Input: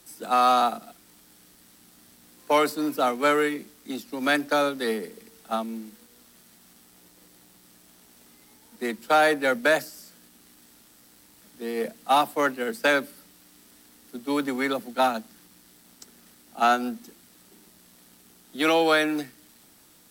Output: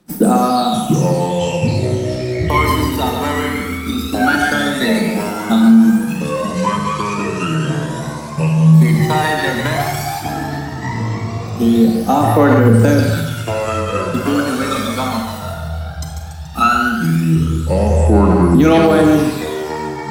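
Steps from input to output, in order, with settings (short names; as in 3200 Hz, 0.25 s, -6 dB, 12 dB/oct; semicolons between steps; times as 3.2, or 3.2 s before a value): bell 190 Hz +12.5 dB 1.1 oct; gate -44 dBFS, range -26 dB; compressor 4:1, threshold -33 dBFS, peak gain reduction 15.5 dB; thinning echo 0.143 s, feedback 54%, high-pass 560 Hz, level -4 dB; phaser 0.16 Hz, delay 1.1 ms, feedback 79%; Schroeder reverb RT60 0.75 s, combs from 31 ms, DRR 4 dB; echoes that change speed 0.606 s, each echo -6 st, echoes 3; maximiser +14.5 dB; gain -1 dB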